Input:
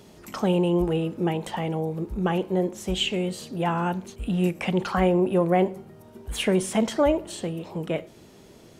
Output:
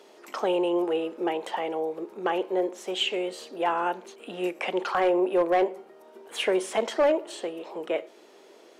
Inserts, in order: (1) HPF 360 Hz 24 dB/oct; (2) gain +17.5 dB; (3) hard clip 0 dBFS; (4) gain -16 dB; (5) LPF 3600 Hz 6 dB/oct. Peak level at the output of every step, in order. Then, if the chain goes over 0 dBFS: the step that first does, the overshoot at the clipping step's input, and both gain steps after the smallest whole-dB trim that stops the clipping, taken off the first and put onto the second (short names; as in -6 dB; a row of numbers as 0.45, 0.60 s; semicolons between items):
-12.0, +5.5, 0.0, -16.0, -16.0 dBFS; step 2, 5.5 dB; step 2 +11.5 dB, step 4 -10 dB